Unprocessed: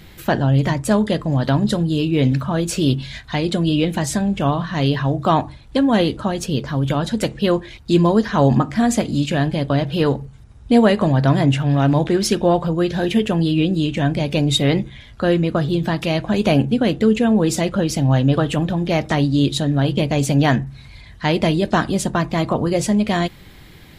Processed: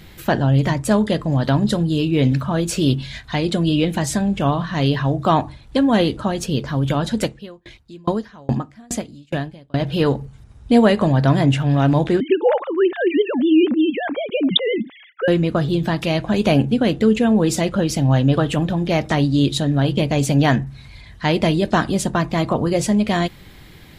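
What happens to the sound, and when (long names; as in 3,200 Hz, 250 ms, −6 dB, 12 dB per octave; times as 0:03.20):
0:07.24–0:09.80: tremolo with a ramp in dB decaying 2.4 Hz, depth 34 dB
0:12.20–0:15.28: three sine waves on the formant tracks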